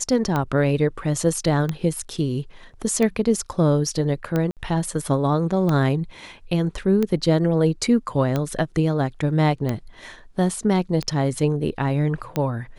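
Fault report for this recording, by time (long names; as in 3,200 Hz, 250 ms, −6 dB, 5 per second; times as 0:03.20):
scratch tick 45 rpm −11 dBFS
0:04.51–0:04.57: drop-out 58 ms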